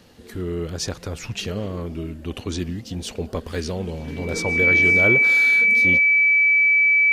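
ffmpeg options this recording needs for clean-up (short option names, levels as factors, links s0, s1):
-af "bandreject=f=2300:w=30"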